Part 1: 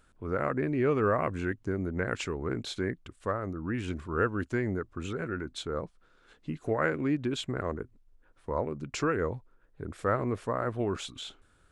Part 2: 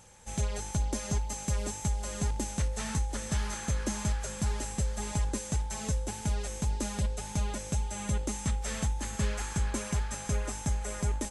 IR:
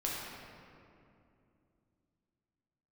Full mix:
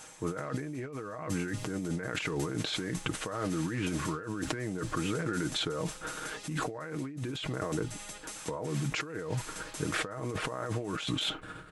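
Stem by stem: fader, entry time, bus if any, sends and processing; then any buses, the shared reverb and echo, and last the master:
+0.5 dB, 0.00 s, no send, tone controls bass +8 dB, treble -11 dB; decay stretcher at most 27 dB/s
-4.5 dB, 0.00 s, no send, spectrum-flattening compressor 2:1; auto duck -6 dB, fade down 0.20 s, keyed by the first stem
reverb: none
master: high-pass 340 Hz 6 dB/octave; comb 6.4 ms, depth 57%; compressor with a negative ratio -35 dBFS, ratio -1

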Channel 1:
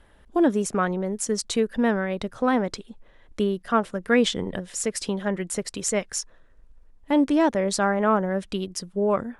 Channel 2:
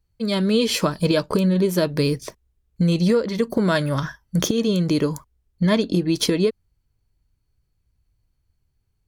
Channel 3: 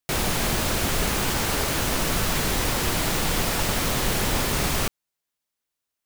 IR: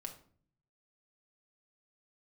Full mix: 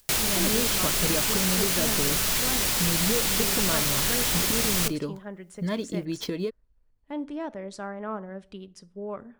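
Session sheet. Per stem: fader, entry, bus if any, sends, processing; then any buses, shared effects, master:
-15.5 dB, 0.00 s, send -6.5 dB, treble shelf 6.9 kHz -10 dB
-10.5 dB, 0.00 s, no send, median filter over 5 samples
-4.5 dB, 0.00 s, send -11.5 dB, treble shelf 2 kHz +12 dB; upward compressor, threshold -45 dBFS; auto duck -6 dB, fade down 0.20 s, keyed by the first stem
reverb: on, RT60 0.50 s, pre-delay 5 ms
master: none

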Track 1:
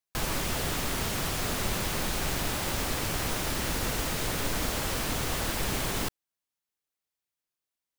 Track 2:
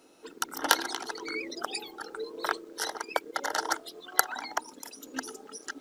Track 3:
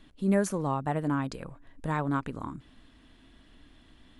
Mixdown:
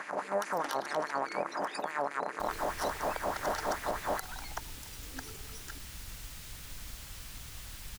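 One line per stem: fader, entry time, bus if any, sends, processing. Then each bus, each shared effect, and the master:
-7.5 dB, 2.25 s, no send, amplifier tone stack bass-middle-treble 5-5-5; bass shelf 130 Hz +11.5 dB
-9.0 dB, 0.00 s, no send, none
-6.0 dB, 0.00 s, no send, spectral levelling over time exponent 0.2; tilt EQ -4.5 dB/octave; LFO high-pass sine 4.8 Hz 620–2500 Hz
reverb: none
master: peak limiter -21.5 dBFS, peak gain reduction 10 dB

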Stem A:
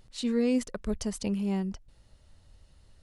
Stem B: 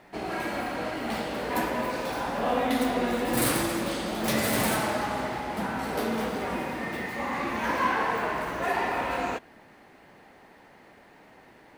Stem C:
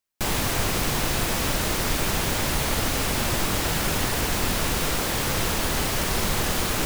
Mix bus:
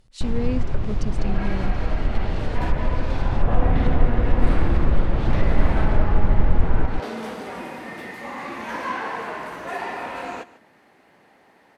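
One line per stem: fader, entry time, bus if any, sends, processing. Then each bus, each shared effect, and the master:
-1.0 dB, 0.00 s, no send, no echo send, none
-2.0 dB, 1.05 s, no send, echo send -18 dB, high-pass 130 Hz 6 dB/octave
-7.0 dB, 0.00 s, no send, echo send -5 dB, tilt EQ -4 dB/octave; auto duck -13 dB, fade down 0.75 s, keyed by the first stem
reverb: none
echo: delay 147 ms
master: low-pass that closes with the level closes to 2.1 kHz, closed at -11.5 dBFS

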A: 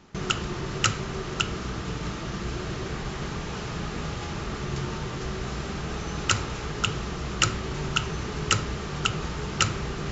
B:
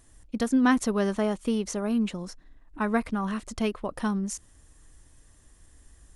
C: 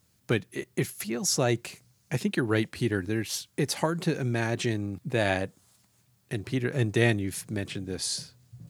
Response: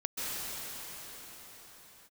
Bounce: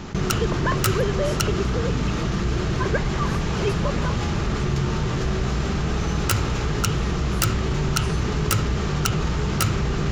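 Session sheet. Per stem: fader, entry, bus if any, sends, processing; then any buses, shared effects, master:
+0.5 dB, 0.00 s, no send, self-modulated delay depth 0.16 ms; bass shelf 230 Hz +6.5 dB; level flattener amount 50%
0.0 dB, 0.00 s, no send, formants replaced by sine waves; comb 1.9 ms, depth 98%
-16.0 dB, 0.00 s, no send, none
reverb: none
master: none

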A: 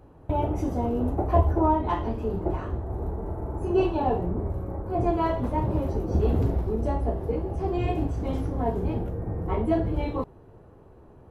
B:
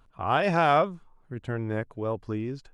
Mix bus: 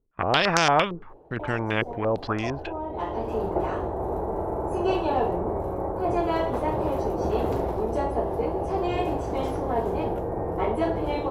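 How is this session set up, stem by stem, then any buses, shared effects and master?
-9.0 dB, 1.10 s, no send, high-order bell 550 Hz +14 dB; auto duck -20 dB, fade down 1.60 s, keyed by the second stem
+0.5 dB, 0.00 s, no send, gate -51 dBFS, range -30 dB; step-sequenced low-pass 8.8 Hz 400–6000 Hz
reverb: none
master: spectrum-flattening compressor 2:1

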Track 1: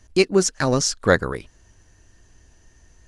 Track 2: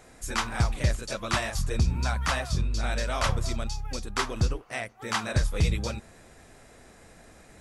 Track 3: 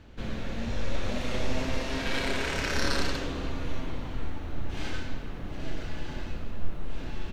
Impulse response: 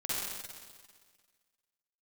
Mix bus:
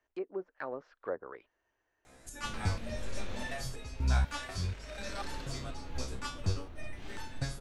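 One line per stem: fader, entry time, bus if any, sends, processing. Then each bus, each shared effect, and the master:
-15.0 dB, 0.00 s, no send, low-pass that closes with the level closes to 660 Hz, closed at -13.5 dBFS; three-band isolator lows -23 dB, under 360 Hz, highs -22 dB, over 2.9 kHz
+2.5 dB, 2.05 s, no send, resonator arpeggio 4.1 Hz 65–890 Hz
3.45 s -9 dB -> 3.71 s -21.5 dB -> 4.81 s -21.5 dB -> 5.44 s -12 dB, 2.25 s, no send, none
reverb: none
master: none

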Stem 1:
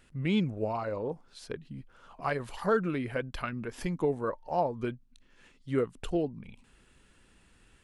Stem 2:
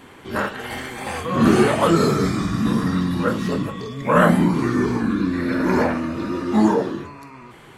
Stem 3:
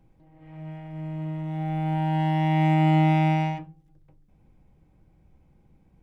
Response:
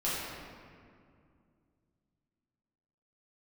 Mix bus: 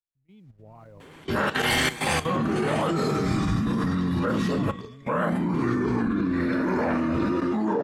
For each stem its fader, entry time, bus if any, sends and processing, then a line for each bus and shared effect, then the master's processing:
-16.0 dB, 0.00 s, bus A, no send, bit crusher 8-bit; bass shelf 200 Hz +10 dB
0.0 dB, 1.00 s, bus A, no send, none
-8.0 dB, 0.00 s, no bus, no send, none
bus A: 0.0 dB, level rider gain up to 14 dB; peak limiter -10.5 dBFS, peak gain reduction 9.5 dB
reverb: none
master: treble shelf 9 kHz -7.5 dB; level held to a coarse grid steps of 12 dB; three bands expanded up and down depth 100%

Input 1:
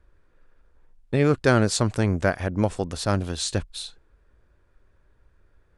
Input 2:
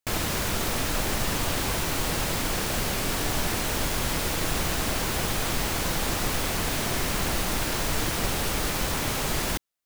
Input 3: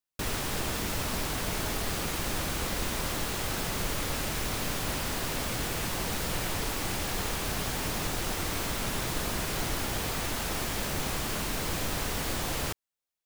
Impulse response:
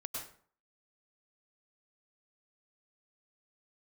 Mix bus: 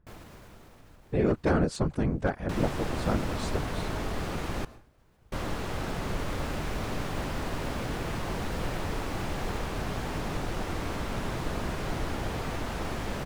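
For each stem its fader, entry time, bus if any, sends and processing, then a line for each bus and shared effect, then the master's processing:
-5.0 dB, 0.00 s, no send, one-sided wavefolder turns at -14 dBFS; whisper effect
-13.0 dB, 0.00 s, no send, peak limiter -19.5 dBFS, peak gain reduction 7 dB; auto duck -22 dB, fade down 1.80 s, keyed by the first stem
+0.5 dB, 2.30 s, muted 4.65–5.32 s, send -14 dB, treble shelf 11 kHz -11.5 dB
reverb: on, RT60 0.50 s, pre-delay 92 ms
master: treble shelf 2.3 kHz -11.5 dB

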